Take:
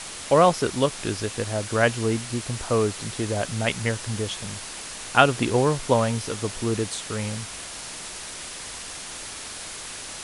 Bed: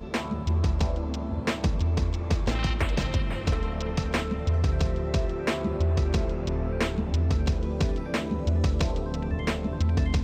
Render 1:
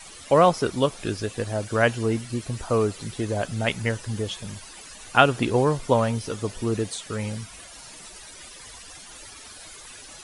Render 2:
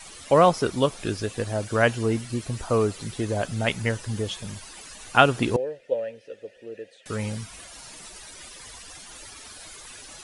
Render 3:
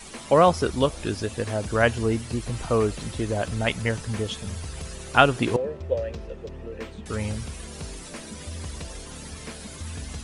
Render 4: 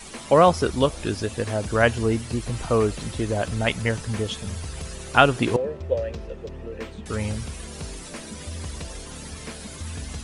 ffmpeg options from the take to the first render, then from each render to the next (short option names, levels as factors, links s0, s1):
-af "afftdn=nr=13:nf=-37"
-filter_complex "[0:a]asettb=1/sr,asplit=3[s0][s1][s2];[s0]atrim=end=5.564[s3];[s1]atrim=start=5.56:end=7.06,asetpts=PTS-STARTPTS,afade=t=in:d=0.004:c=qsin,afade=t=out:st=1.496:d=0.004:c=qsin,asplit=3[s4][s5][s6];[s4]bandpass=f=530:t=q:w=8,volume=1[s7];[s5]bandpass=f=1840:t=q:w=8,volume=0.501[s8];[s6]bandpass=f=2480:t=q:w=8,volume=0.355[s9];[s7][s8][s9]amix=inputs=3:normalize=0[s10];[s2]atrim=start=7.056[s11];[s3][s10]acrossfade=d=0.004:c1=hsin:c2=qsin[s12];[s12][s11]acrossfade=d=0.004:c1=qsin:c2=hsin"
-filter_complex "[1:a]volume=0.251[s0];[0:a][s0]amix=inputs=2:normalize=0"
-af "volume=1.19,alimiter=limit=0.891:level=0:latency=1"